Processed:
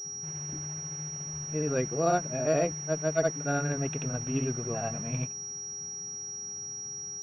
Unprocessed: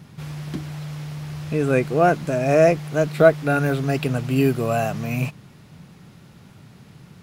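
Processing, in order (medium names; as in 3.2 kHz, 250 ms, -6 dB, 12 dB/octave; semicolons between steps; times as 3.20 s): granulator 150 ms, grains 14 per s, spray 100 ms, pitch spread up and down by 0 st; mains buzz 400 Hz, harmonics 16, -50 dBFS -9 dB/octave; class-D stage that switches slowly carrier 5.7 kHz; trim -8.5 dB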